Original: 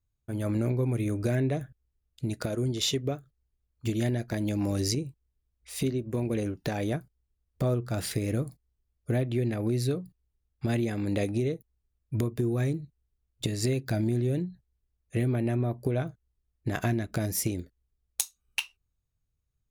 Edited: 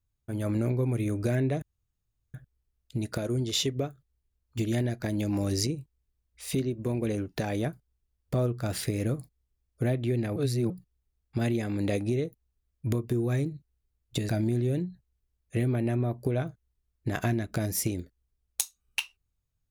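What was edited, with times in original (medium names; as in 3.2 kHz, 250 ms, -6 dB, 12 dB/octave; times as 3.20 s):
1.62 s: insert room tone 0.72 s
9.64–9.98 s: reverse
13.57–13.89 s: delete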